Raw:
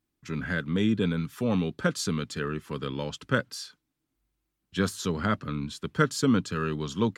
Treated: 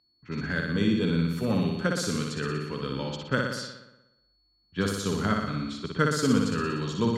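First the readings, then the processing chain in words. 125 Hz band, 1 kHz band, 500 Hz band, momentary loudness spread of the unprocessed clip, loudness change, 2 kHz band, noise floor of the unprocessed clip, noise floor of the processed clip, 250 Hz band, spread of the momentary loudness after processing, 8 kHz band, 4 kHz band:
+1.0 dB, +1.0 dB, +1.0 dB, 10 LU, +1.0 dB, +1.0 dB, -82 dBFS, -69 dBFS, +1.0 dB, 9 LU, +0.5 dB, +1.5 dB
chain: flutter echo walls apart 10.3 m, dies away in 1 s; whine 4400 Hz -46 dBFS; low-pass opened by the level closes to 1200 Hz, open at -24 dBFS; gain -1.5 dB

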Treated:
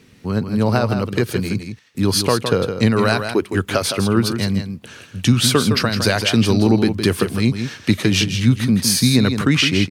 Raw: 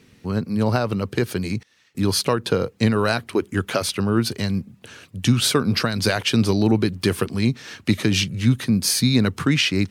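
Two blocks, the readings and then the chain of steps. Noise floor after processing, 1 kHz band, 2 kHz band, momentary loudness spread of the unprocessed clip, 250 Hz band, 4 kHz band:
-47 dBFS, +3.5 dB, +3.5 dB, 8 LU, +3.5 dB, +3.5 dB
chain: echo 0.162 s -8 dB; gain +3 dB

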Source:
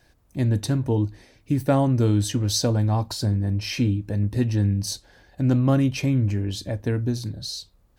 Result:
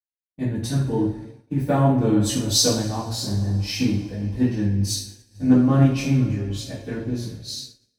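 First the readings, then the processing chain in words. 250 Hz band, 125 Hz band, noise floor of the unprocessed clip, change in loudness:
+3.0 dB, -1.0 dB, -60 dBFS, +1.5 dB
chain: two-slope reverb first 0.53 s, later 4.9 s, from -19 dB, DRR -8.5 dB; expander -23 dBFS; three-band expander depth 70%; gain -7 dB

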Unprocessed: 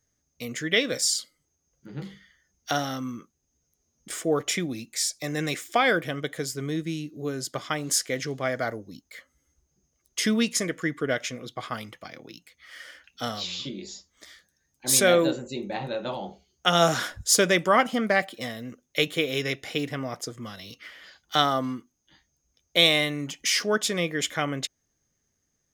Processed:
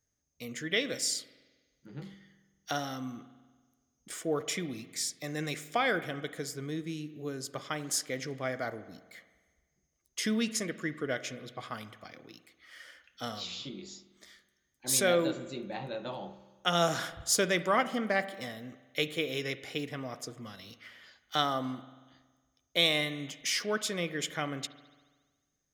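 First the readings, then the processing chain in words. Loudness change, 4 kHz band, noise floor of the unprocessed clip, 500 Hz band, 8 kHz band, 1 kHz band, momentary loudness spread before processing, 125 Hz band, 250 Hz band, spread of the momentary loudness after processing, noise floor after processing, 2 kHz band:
-7.0 dB, -7.0 dB, -76 dBFS, -7.0 dB, -7.0 dB, -7.0 dB, 21 LU, -6.5 dB, -6.5 dB, 20 LU, -79 dBFS, -7.0 dB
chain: spring tank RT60 1.4 s, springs 46 ms, chirp 30 ms, DRR 13.5 dB; gain -7 dB

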